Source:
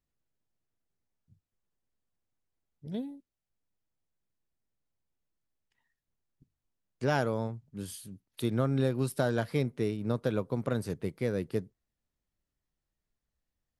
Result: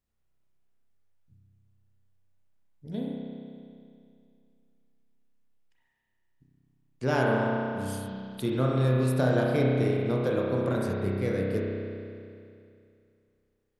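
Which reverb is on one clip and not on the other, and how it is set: spring tank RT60 2.5 s, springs 31 ms, chirp 45 ms, DRR -3.5 dB

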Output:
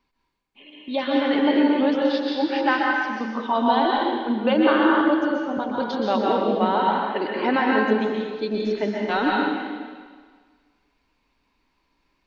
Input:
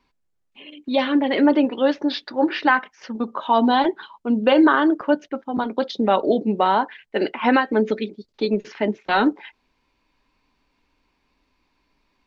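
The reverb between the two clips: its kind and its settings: plate-style reverb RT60 1.6 s, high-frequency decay 1×, pre-delay 0.11 s, DRR -3 dB; gain -5.5 dB

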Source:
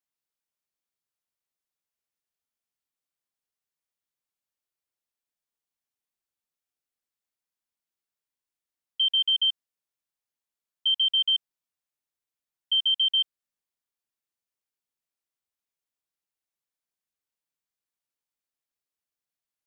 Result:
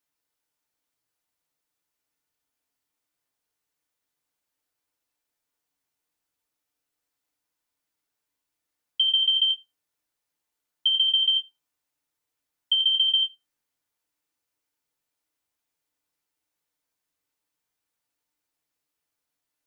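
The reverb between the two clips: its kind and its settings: FDN reverb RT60 0.42 s, low-frequency decay 0.85×, high-frequency decay 0.45×, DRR 0.5 dB; gain +5.5 dB

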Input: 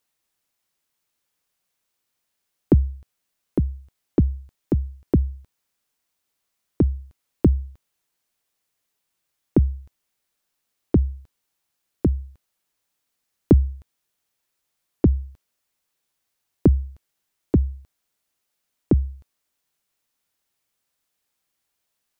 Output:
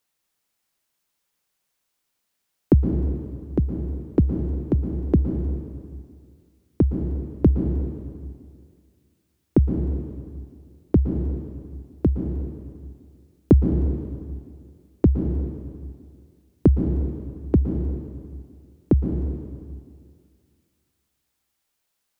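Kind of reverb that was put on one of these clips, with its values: plate-style reverb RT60 2.1 s, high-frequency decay 0.95×, pre-delay 0.105 s, DRR 5 dB

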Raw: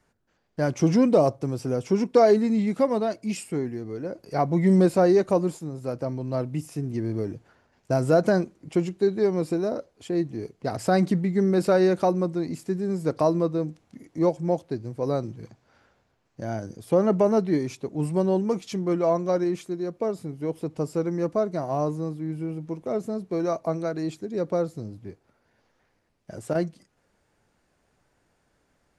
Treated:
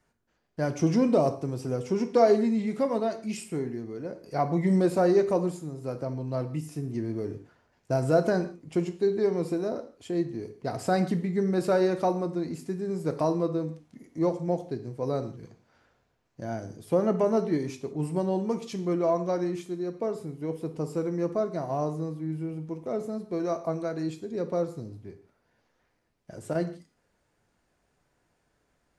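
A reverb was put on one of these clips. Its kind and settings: non-linear reverb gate 0.19 s falling, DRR 7.5 dB; gain -4 dB

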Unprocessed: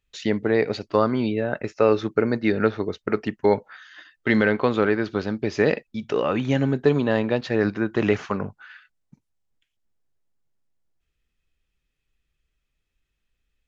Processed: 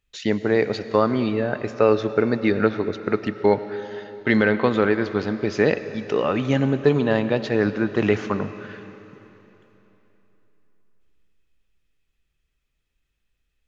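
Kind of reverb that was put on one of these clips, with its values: digital reverb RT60 3.4 s, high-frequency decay 1×, pre-delay 60 ms, DRR 12 dB; gain +1 dB

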